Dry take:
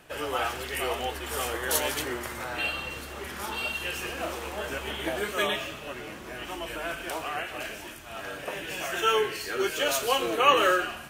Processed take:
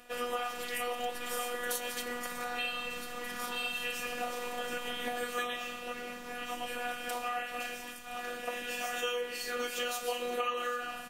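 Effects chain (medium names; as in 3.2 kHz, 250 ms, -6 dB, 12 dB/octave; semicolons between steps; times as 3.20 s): robot voice 243 Hz; comb 5.7 ms, depth 40%; compression 16:1, threshold -29 dBFS, peak gain reduction 14.5 dB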